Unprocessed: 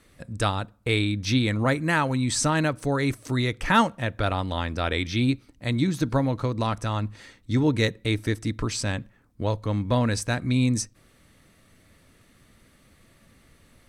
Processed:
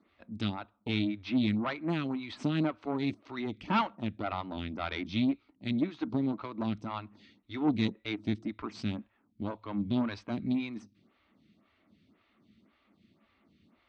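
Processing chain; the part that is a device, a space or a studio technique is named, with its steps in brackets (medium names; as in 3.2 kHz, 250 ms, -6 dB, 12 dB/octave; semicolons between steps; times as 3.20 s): vibe pedal into a guitar amplifier (lamp-driven phase shifter 1.9 Hz; valve stage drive 20 dB, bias 0.75; cabinet simulation 100–4000 Hz, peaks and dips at 130 Hz -9 dB, 210 Hz +7 dB, 320 Hz +3 dB, 500 Hz -10 dB, 1.7 kHz -8 dB)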